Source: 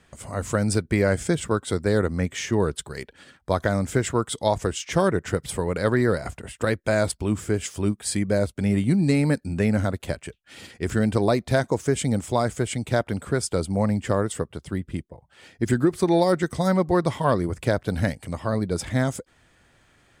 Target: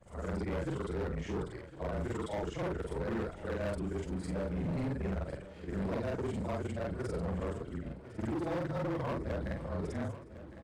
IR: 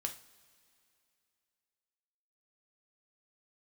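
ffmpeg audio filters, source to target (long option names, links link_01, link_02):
-af "afftfilt=real='re':imag='-im':win_size=8192:overlap=0.75,afreqshift=-22,lowpass=frequency=1500:poles=1,atempo=1.9,bandreject=frequency=50:width_type=h:width=6,bandreject=frequency=100:width_type=h:width=6,bandreject=frequency=150:width_type=h:width=6,asoftclip=type=hard:threshold=-27.5dB,aecho=1:1:1057|2114|3171|4228|5285|6342:0.178|0.107|0.064|0.0384|0.023|0.0138,volume=-4.5dB"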